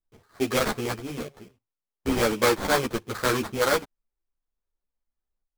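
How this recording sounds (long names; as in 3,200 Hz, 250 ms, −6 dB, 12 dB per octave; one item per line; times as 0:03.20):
aliases and images of a low sample rate 2,800 Hz, jitter 20%
sample-and-hold tremolo
a shimmering, thickened sound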